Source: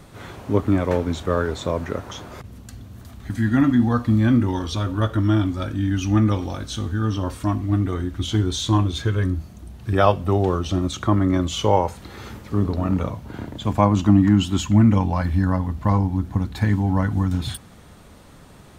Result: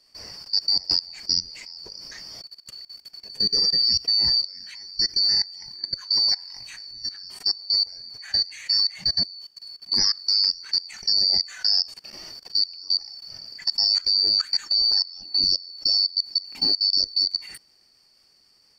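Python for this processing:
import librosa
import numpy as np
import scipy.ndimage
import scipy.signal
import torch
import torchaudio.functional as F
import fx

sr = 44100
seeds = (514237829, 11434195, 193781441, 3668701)

y = fx.band_shuffle(x, sr, order='2341')
y = fx.dynamic_eq(y, sr, hz=950.0, q=2.8, threshold_db=-53.0, ratio=4.0, max_db=6, at=(6.14, 8.41))
y = fx.level_steps(y, sr, step_db=20)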